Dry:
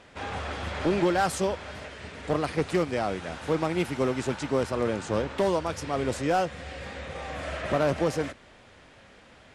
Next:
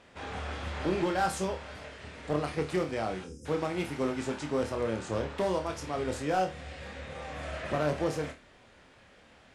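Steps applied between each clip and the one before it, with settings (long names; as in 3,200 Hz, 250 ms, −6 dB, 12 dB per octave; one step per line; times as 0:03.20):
time-frequency box erased 0:03.25–0:03.45, 530–4,900 Hz
flutter between parallel walls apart 4.6 metres, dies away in 0.25 s
level −5.5 dB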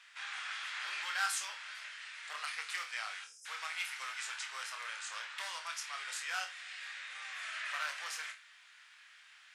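high-pass filter 1,400 Hz 24 dB per octave
level +3 dB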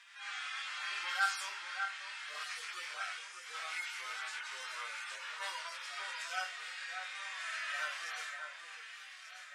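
harmonic-percussive split with one part muted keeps harmonic
delay that swaps between a low-pass and a high-pass 595 ms, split 2,000 Hz, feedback 68%, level −6 dB
level +3.5 dB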